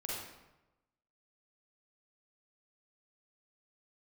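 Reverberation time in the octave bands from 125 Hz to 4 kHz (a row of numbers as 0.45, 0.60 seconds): 1.2, 1.0, 1.0, 1.0, 0.85, 0.70 seconds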